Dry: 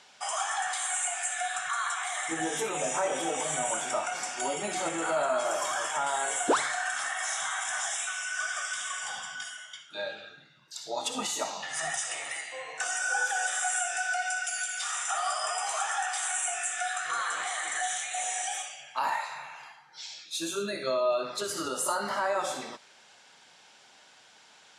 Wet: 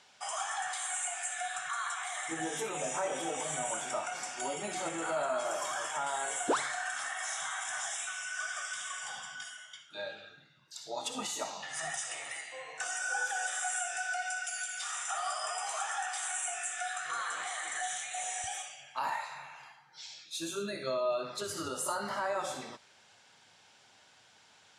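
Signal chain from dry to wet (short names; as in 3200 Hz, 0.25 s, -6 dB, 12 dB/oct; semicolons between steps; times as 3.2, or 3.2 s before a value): bell 96 Hz +5.5 dB 1.1 oct, from 18.44 s +12 dB; gain -5 dB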